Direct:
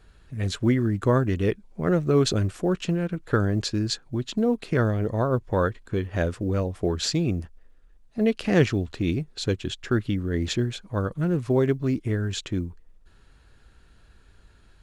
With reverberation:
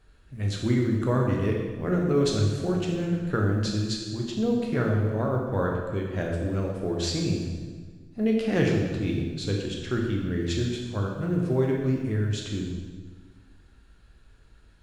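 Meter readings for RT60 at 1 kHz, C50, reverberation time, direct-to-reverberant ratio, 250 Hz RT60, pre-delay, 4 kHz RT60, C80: 1.4 s, 2.5 dB, 1.5 s, −1.0 dB, 1.8 s, 12 ms, 1.3 s, 4.5 dB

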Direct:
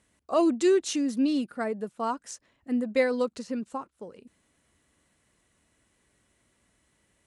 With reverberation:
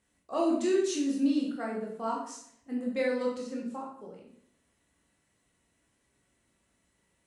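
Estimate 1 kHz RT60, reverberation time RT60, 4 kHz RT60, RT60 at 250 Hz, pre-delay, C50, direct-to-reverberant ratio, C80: 0.65 s, 0.65 s, 0.60 s, 0.80 s, 14 ms, 4.0 dB, −3.0 dB, 7.5 dB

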